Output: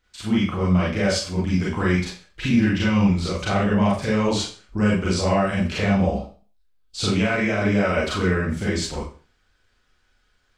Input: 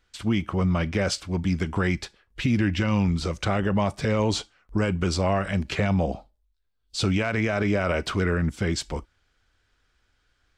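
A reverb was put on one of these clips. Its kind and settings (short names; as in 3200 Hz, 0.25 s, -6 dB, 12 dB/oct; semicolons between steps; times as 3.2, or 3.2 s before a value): Schroeder reverb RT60 0.38 s, combs from 30 ms, DRR -6 dB; gain -3.5 dB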